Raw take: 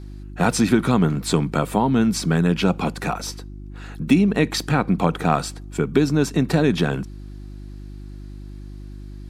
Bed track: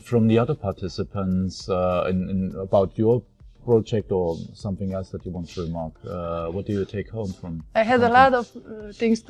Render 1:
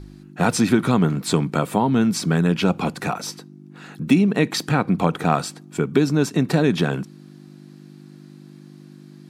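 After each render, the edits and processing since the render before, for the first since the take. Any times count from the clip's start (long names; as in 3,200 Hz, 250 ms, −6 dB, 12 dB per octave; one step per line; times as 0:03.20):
hum removal 50 Hz, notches 2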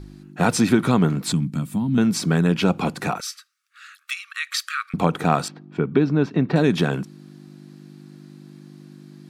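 0:01.32–0:01.98: drawn EQ curve 250 Hz 0 dB, 430 Hz −22 dB, 10,000 Hz −4 dB
0:03.20–0:04.94: linear-phase brick-wall high-pass 1,100 Hz
0:05.48–0:06.56: high-frequency loss of the air 290 metres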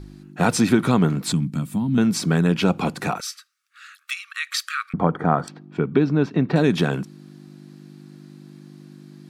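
0:04.93–0:05.48: Savitzky-Golay smoothing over 41 samples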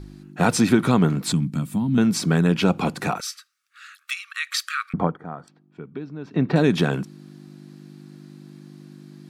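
0:05.00–0:06.42: duck −15.5 dB, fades 0.18 s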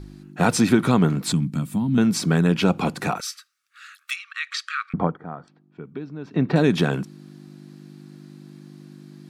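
0:04.16–0:05.85: high-frequency loss of the air 99 metres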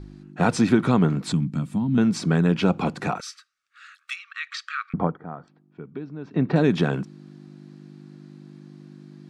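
Chebyshev low-pass filter 7,500 Hz, order 2
high-shelf EQ 3,300 Hz −8 dB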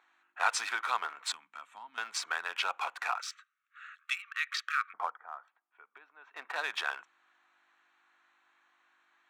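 adaptive Wiener filter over 9 samples
high-pass filter 980 Hz 24 dB per octave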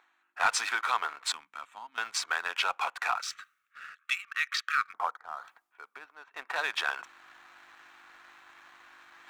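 reversed playback
upward compression, threshold −41 dBFS
reversed playback
leveller curve on the samples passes 1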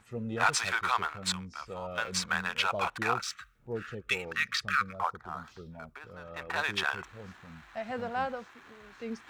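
mix in bed track −18 dB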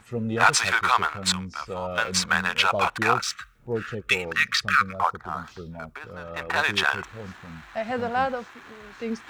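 level +8 dB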